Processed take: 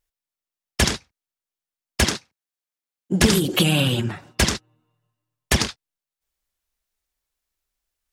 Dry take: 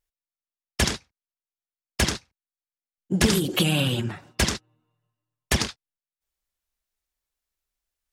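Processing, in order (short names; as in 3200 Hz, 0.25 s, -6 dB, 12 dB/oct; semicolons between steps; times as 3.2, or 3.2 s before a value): 2.04–3.2 HPF 140 Hz; gain +3.5 dB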